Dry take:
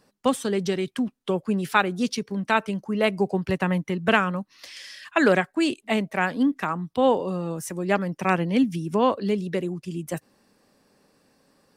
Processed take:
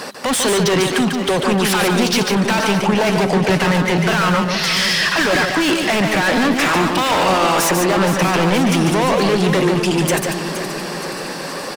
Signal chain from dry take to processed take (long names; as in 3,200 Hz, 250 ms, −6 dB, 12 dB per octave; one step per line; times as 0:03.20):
0:06.42–0:07.66: ceiling on every frequency bin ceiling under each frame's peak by 19 dB
mid-hump overdrive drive 37 dB, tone 5,300 Hz, clips at −5.5 dBFS
in parallel at −2.5 dB: compressor whose output falls as the input rises −19 dBFS
on the sum: brickwall limiter −13.5 dBFS, peak gain reduction 10 dB
on a send: single-tap delay 145 ms −5 dB
on the sum: feedback echo with a swinging delay time 472 ms, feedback 60%, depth 83 cents, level −10.5 dB